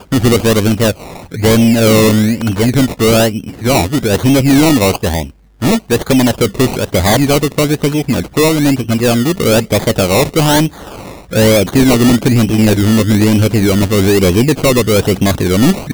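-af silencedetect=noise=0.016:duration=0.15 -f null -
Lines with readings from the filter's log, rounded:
silence_start: 5.31
silence_end: 5.61 | silence_duration: 0.30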